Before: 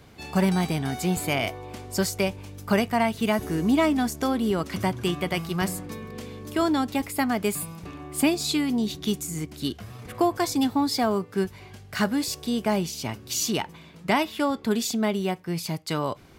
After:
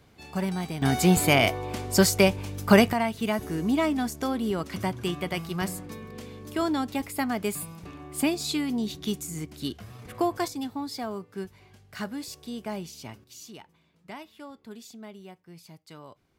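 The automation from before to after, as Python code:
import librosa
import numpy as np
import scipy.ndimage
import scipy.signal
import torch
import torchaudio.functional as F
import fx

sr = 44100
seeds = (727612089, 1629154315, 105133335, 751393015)

y = fx.gain(x, sr, db=fx.steps((0.0, -7.0), (0.82, 5.5), (2.93, -3.5), (10.48, -10.0), (13.24, -19.0)))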